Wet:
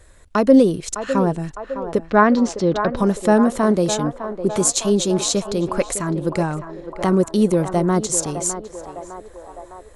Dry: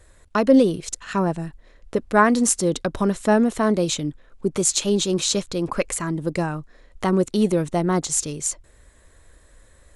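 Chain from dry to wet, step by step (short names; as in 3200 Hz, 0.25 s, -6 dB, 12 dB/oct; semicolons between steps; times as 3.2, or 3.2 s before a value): 2.06–2.97 LPF 4800 Hz 24 dB/oct; dynamic EQ 2800 Hz, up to -5 dB, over -37 dBFS, Q 0.75; on a send: narrowing echo 0.607 s, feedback 71%, band-pass 800 Hz, level -8 dB; on the sum: gain +3 dB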